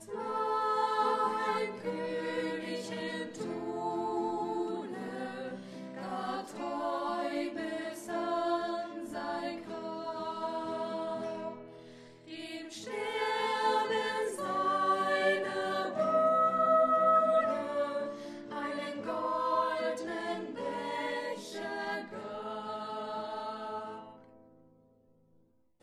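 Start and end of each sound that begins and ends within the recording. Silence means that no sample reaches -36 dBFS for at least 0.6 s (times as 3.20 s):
12.32–23.96 s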